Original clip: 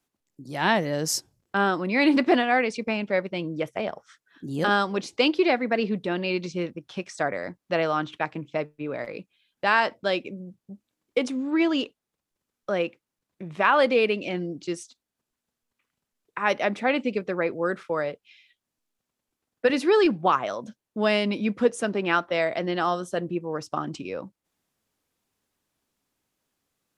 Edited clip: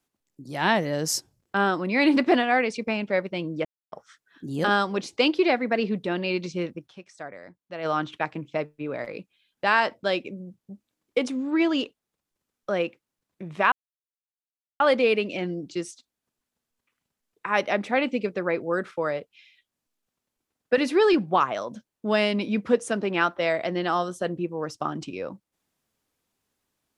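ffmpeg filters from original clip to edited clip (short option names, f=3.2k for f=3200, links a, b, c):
-filter_complex "[0:a]asplit=6[a][b][c][d][e][f];[a]atrim=end=3.65,asetpts=PTS-STARTPTS,afade=t=out:st=3.646:d=0.004:c=hsin[g];[b]atrim=start=3.65:end=3.92,asetpts=PTS-STARTPTS,volume=0[h];[c]atrim=start=3.92:end=7.09,asetpts=PTS-STARTPTS,afade=t=in:d=0.004:c=hsin,afade=t=out:st=2.94:d=0.23:c=exp:silence=0.251189[i];[d]atrim=start=7.09:end=7.63,asetpts=PTS-STARTPTS,volume=-12dB[j];[e]atrim=start=7.63:end=13.72,asetpts=PTS-STARTPTS,afade=t=in:d=0.23:c=exp:silence=0.251189,afade=t=out:st=6.086:d=0.004:c=hsin,apad=pad_dur=1.08[k];[f]atrim=start=13.72,asetpts=PTS-STARTPTS,afade=t=in:d=0.004:c=hsin[l];[g][h][i][j][k][l]concat=n=6:v=0:a=1"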